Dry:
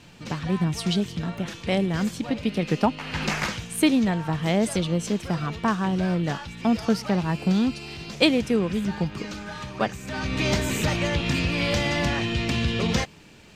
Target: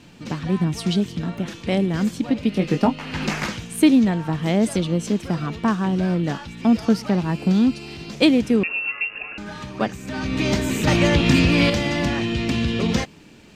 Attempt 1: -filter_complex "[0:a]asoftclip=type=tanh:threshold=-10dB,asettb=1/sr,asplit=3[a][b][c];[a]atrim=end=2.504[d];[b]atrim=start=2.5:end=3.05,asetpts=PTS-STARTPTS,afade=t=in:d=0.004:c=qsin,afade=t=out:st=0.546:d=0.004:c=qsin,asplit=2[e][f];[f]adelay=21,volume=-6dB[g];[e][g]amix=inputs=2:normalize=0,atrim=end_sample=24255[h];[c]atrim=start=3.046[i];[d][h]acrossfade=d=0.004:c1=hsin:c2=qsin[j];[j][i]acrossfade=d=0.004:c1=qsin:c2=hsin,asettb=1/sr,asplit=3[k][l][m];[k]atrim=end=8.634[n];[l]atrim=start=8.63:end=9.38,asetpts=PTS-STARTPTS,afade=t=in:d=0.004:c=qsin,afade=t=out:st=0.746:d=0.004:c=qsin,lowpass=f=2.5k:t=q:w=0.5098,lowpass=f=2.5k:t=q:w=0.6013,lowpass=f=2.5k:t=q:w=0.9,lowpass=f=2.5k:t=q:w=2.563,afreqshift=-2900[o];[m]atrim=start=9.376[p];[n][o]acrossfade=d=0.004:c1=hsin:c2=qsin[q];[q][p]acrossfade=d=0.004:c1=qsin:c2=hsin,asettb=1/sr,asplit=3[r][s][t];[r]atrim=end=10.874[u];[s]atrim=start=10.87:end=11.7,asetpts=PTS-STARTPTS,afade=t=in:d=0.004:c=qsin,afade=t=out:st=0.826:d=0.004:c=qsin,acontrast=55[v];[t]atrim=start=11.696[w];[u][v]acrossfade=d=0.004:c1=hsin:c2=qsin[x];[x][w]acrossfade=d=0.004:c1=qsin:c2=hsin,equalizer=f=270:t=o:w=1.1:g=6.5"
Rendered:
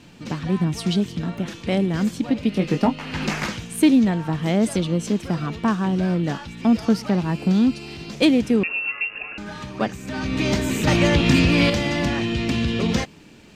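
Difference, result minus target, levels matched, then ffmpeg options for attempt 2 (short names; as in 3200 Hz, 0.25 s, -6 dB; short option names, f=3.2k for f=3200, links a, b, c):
soft clip: distortion +14 dB
-filter_complex "[0:a]asoftclip=type=tanh:threshold=-2dB,asettb=1/sr,asplit=3[a][b][c];[a]atrim=end=2.504[d];[b]atrim=start=2.5:end=3.05,asetpts=PTS-STARTPTS,afade=t=in:d=0.004:c=qsin,afade=t=out:st=0.546:d=0.004:c=qsin,asplit=2[e][f];[f]adelay=21,volume=-6dB[g];[e][g]amix=inputs=2:normalize=0,atrim=end_sample=24255[h];[c]atrim=start=3.046[i];[d][h]acrossfade=d=0.004:c1=hsin:c2=qsin[j];[j][i]acrossfade=d=0.004:c1=qsin:c2=hsin,asettb=1/sr,asplit=3[k][l][m];[k]atrim=end=8.634[n];[l]atrim=start=8.63:end=9.38,asetpts=PTS-STARTPTS,afade=t=in:d=0.004:c=qsin,afade=t=out:st=0.746:d=0.004:c=qsin,lowpass=f=2.5k:t=q:w=0.5098,lowpass=f=2.5k:t=q:w=0.6013,lowpass=f=2.5k:t=q:w=0.9,lowpass=f=2.5k:t=q:w=2.563,afreqshift=-2900[o];[m]atrim=start=9.376[p];[n][o]acrossfade=d=0.004:c1=hsin:c2=qsin[q];[q][p]acrossfade=d=0.004:c1=qsin:c2=hsin,asettb=1/sr,asplit=3[r][s][t];[r]atrim=end=10.874[u];[s]atrim=start=10.87:end=11.7,asetpts=PTS-STARTPTS,afade=t=in:d=0.004:c=qsin,afade=t=out:st=0.826:d=0.004:c=qsin,acontrast=55[v];[t]atrim=start=11.696[w];[u][v]acrossfade=d=0.004:c1=hsin:c2=qsin[x];[x][w]acrossfade=d=0.004:c1=qsin:c2=hsin,equalizer=f=270:t=o:w=1.1:g=6.5"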